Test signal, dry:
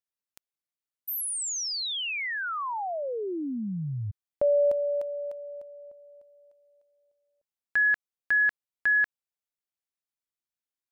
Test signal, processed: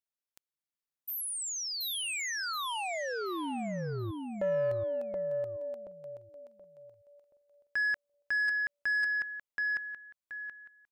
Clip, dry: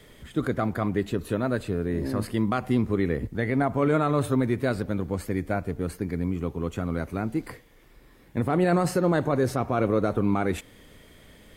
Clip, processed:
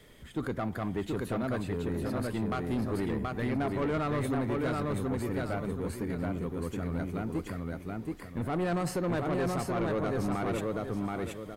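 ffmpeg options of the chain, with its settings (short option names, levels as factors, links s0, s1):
-af "aecho=1:1:727|1454|2181|2908:0.708|0.205|0.0595|0.0173,asoftclip=type=tanh:threshold=0.0944,volume=0.596"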